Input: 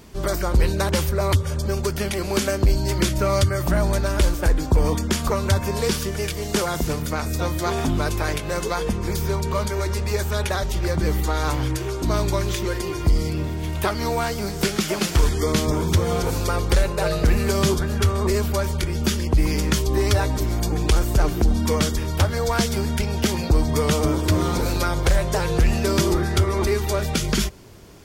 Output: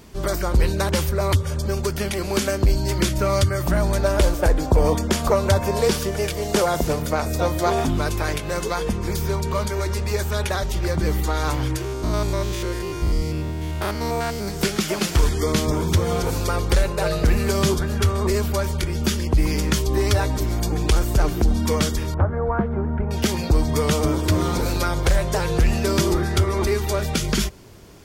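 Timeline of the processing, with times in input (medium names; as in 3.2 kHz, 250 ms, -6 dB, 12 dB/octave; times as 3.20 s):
3.99–7.84 s: peaking EQ 620 Hz +7.5 dB 1.1 oct
11.84–14.48 s: spectrogram pixelated in time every 100 ms
22.14–23.11 s: low-pass 1.4 kHz 24 dB/octave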